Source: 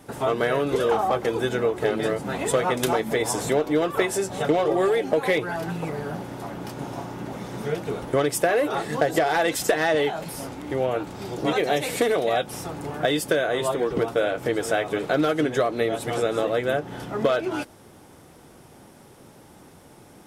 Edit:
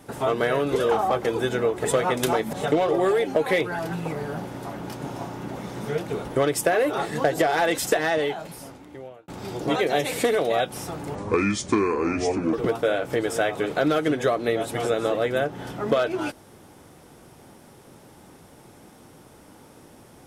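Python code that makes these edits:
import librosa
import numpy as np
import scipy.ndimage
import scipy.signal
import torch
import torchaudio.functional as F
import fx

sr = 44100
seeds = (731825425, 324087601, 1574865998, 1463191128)

y = fx.edit(x, sr, fx.cut(start_s=1.85, length_s=0.6),
    fx.cut(start_s=3.13, length_s=1.17),
    fx.fade_out_span(start_s=9.65, length_s=1.4),
    fx.speed_span(start_s=12.92, length_s=0.94, speed=0.68), tone=tone)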